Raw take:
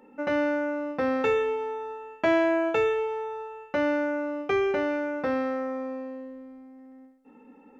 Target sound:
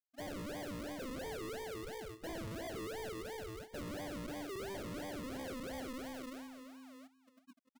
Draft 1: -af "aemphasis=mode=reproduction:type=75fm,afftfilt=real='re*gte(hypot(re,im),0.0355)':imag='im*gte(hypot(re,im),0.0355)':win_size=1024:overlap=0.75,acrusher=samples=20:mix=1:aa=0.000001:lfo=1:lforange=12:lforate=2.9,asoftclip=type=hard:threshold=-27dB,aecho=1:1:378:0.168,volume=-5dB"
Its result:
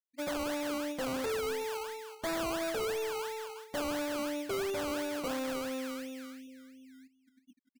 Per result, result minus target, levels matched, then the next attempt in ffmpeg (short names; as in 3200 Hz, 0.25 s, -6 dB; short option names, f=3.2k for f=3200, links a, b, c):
decimation with a swept rate: distortion -16 dB; hard clip: distortion -5 dB
-af "aemphasis=mode=reproduction:type=75fm,afftfilt=real='re*gte(hypot(re,im),0.0355)':imag='im*gte(hypot(re,im),0.0355)':win_size=1024:overlap=0.75,acrusher=samples=45:mix=1:aa=0.000001:lfo=1:lforange=27:lforate=2.9,asoftclip=type=hard:threshold=-27dB,aecho=1:1:378:0.168,volume=-5dB"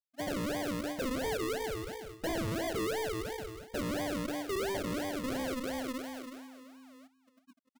hard clip: distortion -5 dB
-af "aemphasis=mode=reproduction:type=75fm,afftfilt=real='re*gte(hypot(re,im),0.0355)':imag='im*gte(hypot(re,im),0.0355)':win_size=1024:overlap=0.75,acrusher=samples=45:mix=1:aa=0.000001:lfo=1:lforange=27:lforate=2.9,asoftclip=type=hard:threshold=-37.5dB,aecho=1:1:378:0.168,volume=-5dB"